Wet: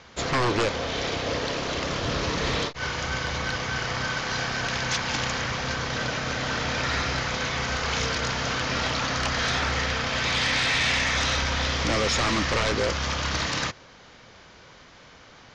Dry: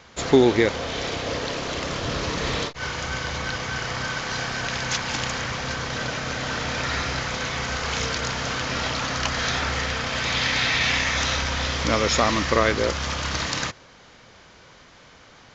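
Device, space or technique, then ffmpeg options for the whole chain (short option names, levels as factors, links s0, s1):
synthesiser wavefolder: -af "aeval=exprs='0.133*(abs(mod(val(0)/0.133+3,4)-2)-1)':c=same,lowpass=f=7000:w=0.5412,lowpass=f=7000:w=1.3066"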